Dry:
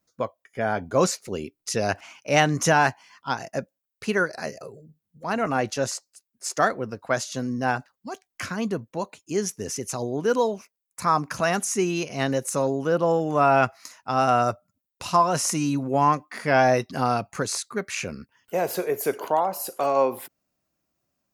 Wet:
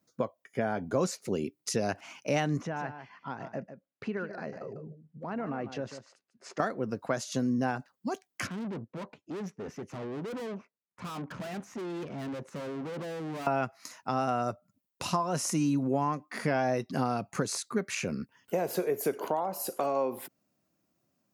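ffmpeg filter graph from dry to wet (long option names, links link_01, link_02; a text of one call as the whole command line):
ffmpeg -i in.wav -filter_complex "[0:a]asettb=1/sr,asplit=3[link_01][link_02][link_03];[link_01]atrim=end=2.614[link_04];[link_02]atrim=start=2.61:end=6.6,asetpts=PTS-STARTPTS,afade=type=in:duration=0.004:curve=qsin,afade=type=out:start_time=3.986:duration=0.004:curve=qsin,lowpass=2400,acompressor=threshold=-40dB:ratio=2.5:attack=3.2:release=140:knee=1:detection=peak,aecho=1:1:148:0.282,atrim=end_sample=175959[link_05];[link_03]atrim=start=6.596[link_06];[link_04][link_05]acrossfade=duration=0.004:curve1=hsin:curve2=qsin[link_07];[link_07][link_06]acrossfade=duration=0.004:curve1=qsin:curve2=hsin,asettb=1/sr,asplit=3[link_08][link_09][link_10];[link_08]atrim=end=8.474[link_11];[link_09]atrim=start=8.47:end=13.47,asetpts=PTS-STARTPTS,afade=type=in:duration=0.004:curve=qsin,afade=type=out:start_time=4.996:duration=0.004:curve=qsin,lowpass=2000,aeval=exprs='(tanh(89.1*val(0)+0.7)-tanh(0.7))/89.1':channel_layout=same[link_12];[link_10]atrim=start=13.466[link_13];[link_11][link_12]acrossfade=duration=0.004:curve1=hsin:curve2=qsin[link_14];[link_14][link_13]acrossfade=duration=0.004:curve1=qsin:curve2=hsin,acompressor=threshold=-31dB:ratio=3,highpass=160,lowshelf=frequency=350:gain=10.5,volume=-1dB" out.wav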